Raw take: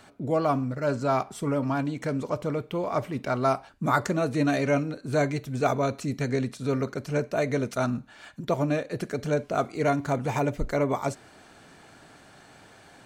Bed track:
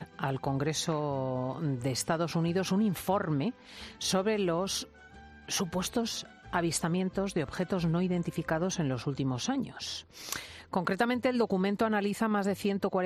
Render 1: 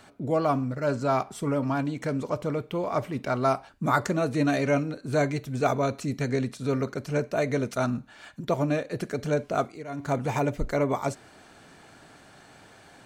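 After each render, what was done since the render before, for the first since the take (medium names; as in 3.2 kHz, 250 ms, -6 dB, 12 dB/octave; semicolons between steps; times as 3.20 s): 9.60–10.12 s: dip -16.5 dB, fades 0.24 s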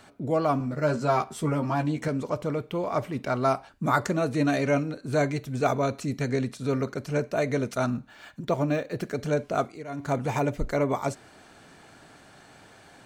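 0.59–2.08 s: doubling 13 ms -3 dB; 7.93–9.13 s: decimation joined by straight lines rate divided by 2×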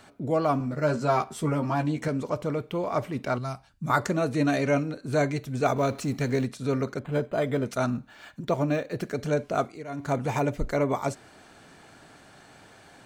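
3.38–3.90 s: FFT filter 140 Hz 0 dB, 240 Hz -9 dB, 350 Hz -16 dB, 2.3 kHz -9 dB, 5 kHz -4 dB; 5.76–6.46 s: companding laws mixed up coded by mu; 6.99–7.66 s: decimation joined by straight lines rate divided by 8×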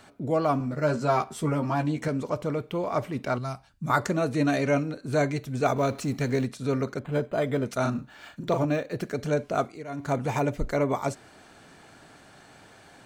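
7.81–8.65 s: doubling 38 ms -5 dB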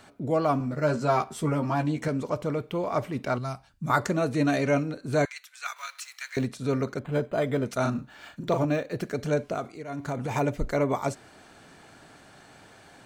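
5.25–6.37 s: inverse Chebyshev high-pass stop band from 300 Hz, stop band 70 dB; 9.53–10.31 s: compression, threshold -26 dBFS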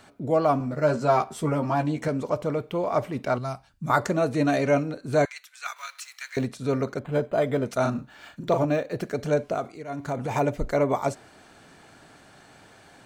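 dynamic bell 660 Hz, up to +4 dB, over -39 dBFS, Q 1.1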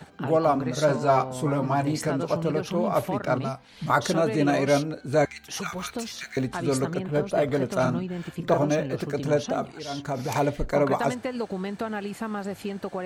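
add bed track -2.5 dB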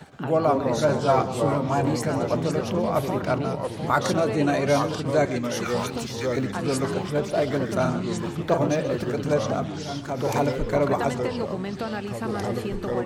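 delay 132 ms -15 dB; ever faster or slower copies 118 ms, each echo -3 st, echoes 3, each echo -6 dB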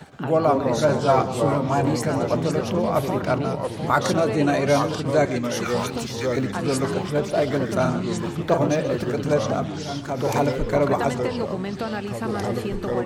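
trim +2 dB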